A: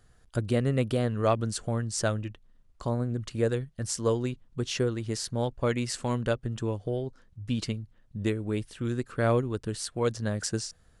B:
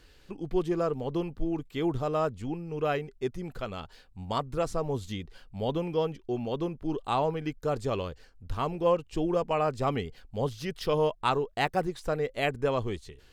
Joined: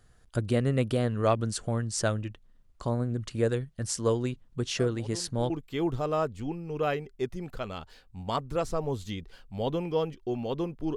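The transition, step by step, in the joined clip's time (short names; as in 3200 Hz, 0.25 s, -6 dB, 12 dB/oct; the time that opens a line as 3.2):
A
4.79 add B from 0.81 s 0.71 s -13 dB
5.5 switch to B from 1.52 s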